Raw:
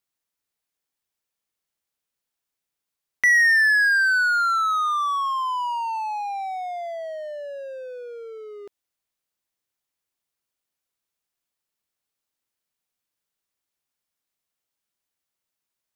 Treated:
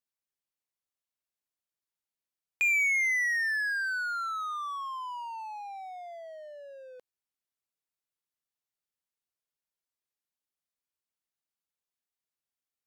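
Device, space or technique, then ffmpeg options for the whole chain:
nightcore: -af "asetrate=54684,aresample=44100,volume=-9dB"

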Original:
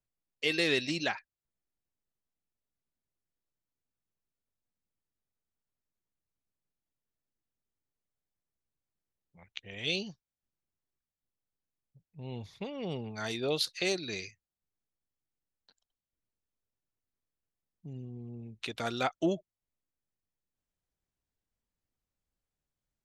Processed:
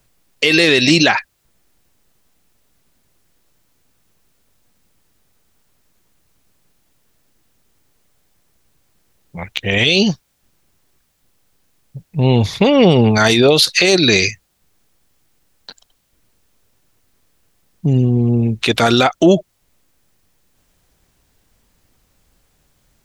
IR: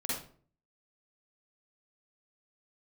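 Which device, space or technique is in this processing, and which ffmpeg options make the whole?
loud club master: -af "acompressor=threshold=-34dB:ratio=2,asoftclip=type=hard:threshold=-21dB,alimiter=level_in=30.5dB:limit=-1dB:release=50:level=0:latency=1,volume=-1dB"

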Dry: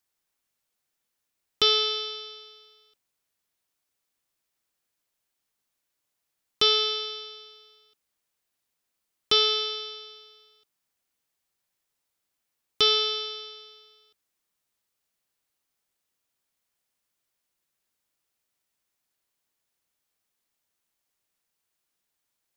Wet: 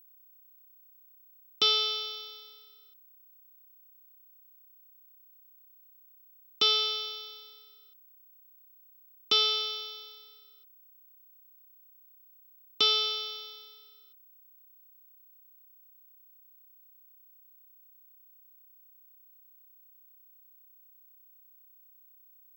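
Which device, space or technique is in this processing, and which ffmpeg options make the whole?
old television with a line whistle: -af "highpass=frequency=170:width=0.5412,highpass=frequency=170:width=1.3066,equalizer=frequency=430:width_type=q:width=4:gain=-6,equalizer=frequency=660:width_type=q:width=4:gain=-5,equalizer=frequency=1700:width_type=q:width=4:gain=-10,lowpass=frequency=6900:width=0.5412,lowpass=frequency=6900:width=1.3066,aeval=exprs='val(0)+0.00224*sin(2*PI*15734*n/s)':channel_layout=same,volume=-2.5dB"

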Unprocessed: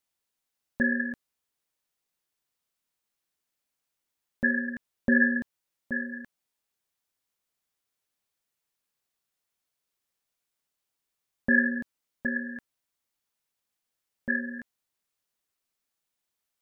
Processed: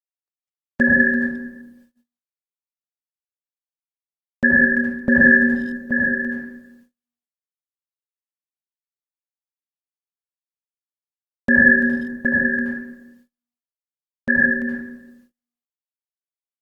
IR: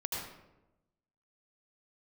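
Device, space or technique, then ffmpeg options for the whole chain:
speakerphone in a meeting room: -filter_complex "[1:a]atrim=start_sample=2205[link_01];[0:a][link_01]afir=irnorm=-1:irlink=0,asplit=2[link_02][link_03];[link_03]adelay=350,highpass=300,lowpass=3400,asoftclip=type=hard:threshold=-18dB,volume=-26dB[link_04];[link_02][link_04]amix=inputs=2:normalize=0,dynaudnorm=framelen=100:gausssize=5:maxgain=11.5dB,agate=range=-34dB:threshold=-52dB:ratio=16:detection=peak" -ar 48000 -c:a libopus -b:a 24k

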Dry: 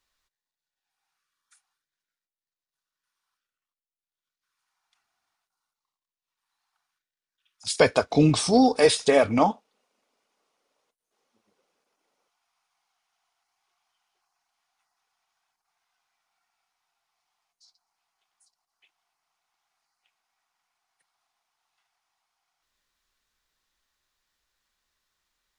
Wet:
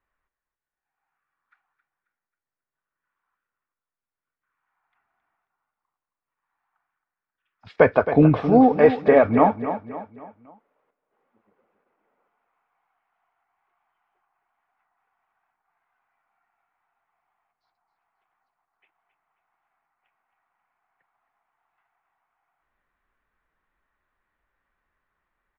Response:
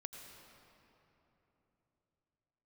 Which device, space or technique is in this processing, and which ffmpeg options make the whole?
action camera in a waterproof case: -af "lowpass=frequency=2000:width=0.5412,lowpass=frequency=2000:width=1.3066,aecho=1:1:269|538|807|1076:0.282|0.116|0.0474|0.0194,dynaudnorm=framelen=270:gausssize=9:maxgain=4dB,volume=1.5dB" -ar 44100 -c:a aac -b:a 64k

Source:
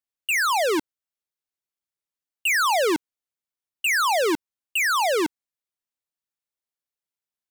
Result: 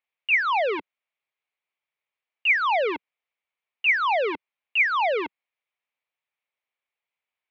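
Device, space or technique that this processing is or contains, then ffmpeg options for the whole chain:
overdrive pedal into a guitar cabinet: -filter_complex "[0:a]asplit=2[link_01][link_02];[link_02]highpass=frequency=720:poles=1,volume=15dB,asoftclip=type=tanh:threshold=-20dB[link_03];[link_01][link_03]amix=inputs=2:normalize=0,lowpass=frequency=2700:poles=1,volume=-6dB,highpass=82,equalizer=frequency=190:width_type=q:width=4:gain=-8,equalizer=frequency=320:width_type=q:width=4:gain=-10,equalizer=frequency=1500:width_type=q:width=4:gain=-5,equalizer=frequency=2300:width_type=q:width=4:gain=8,lowpass=frequency=3500:width=0.5412,lowpass=frequency=3500:width=1.3066"

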